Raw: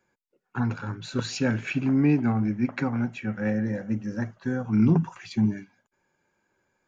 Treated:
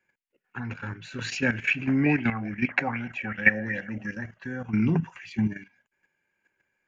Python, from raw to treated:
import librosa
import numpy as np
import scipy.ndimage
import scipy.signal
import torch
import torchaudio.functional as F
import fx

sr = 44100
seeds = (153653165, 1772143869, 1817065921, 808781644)

y = fx.band_shelf(x, sr, hz=2200.0, db=11.0, octaves=1.1)
y = fx.level_steps(y, sr, step_db=11)
y = fx.bell_lfo(y, sr, hz=2.6, low_hz=600.0, high_hz=3400.0, db=17, at=(2.06, 4.15))